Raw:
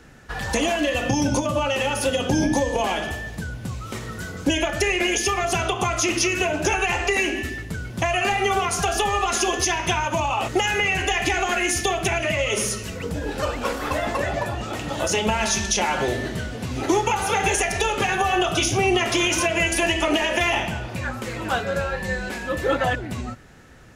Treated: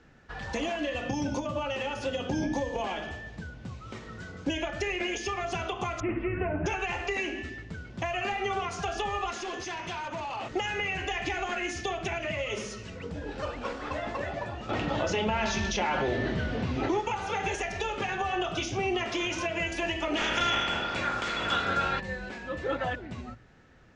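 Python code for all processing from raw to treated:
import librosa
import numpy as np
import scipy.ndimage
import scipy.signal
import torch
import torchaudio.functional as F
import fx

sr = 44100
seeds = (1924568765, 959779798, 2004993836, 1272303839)

y = fx.chain(x, sr, fx.steep_lowpass(hz=2200.0, slope=36),
    fx.low_shelf(hz=210.0, db=11.5), at=(6.0, 6.66))
y = fx.chain(y, sr, fx.highpass(hz=100.0, slope=12),
    fx.clip_hard(threshold_db=-23.0), at=(9.3, 10.51))
y = fx.chain(y, sr, fx.air_absorb(metres=93.0),
    fx.env_flatten(amount_pct=70), at=(14.69, 17.0))
y = fx.spec_clip(y, sr, under_db=18, at=(20.16, 21.99), fade=0.02)
y = fx.small_body(y, sr, hz=(1400.0, 3400.0), ring_ms=85, db=18, at=(20.16, 21.99), fade=0.02)
y = fx.env_flatten(y, sr, amount_pct=50, at=(20.16, 21.99), fade=0.02)
y = scipy.signal.sosfilt(scipy.signal.bessel(8, 4500.0, 'lowpass', norm='mag', fs=sr, output='sos'), y)
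y = fx.hum_notches(y, sr, base_hz=60, count=2)
y = F.gain(torch.from_numpy(y), -9.0).numpy()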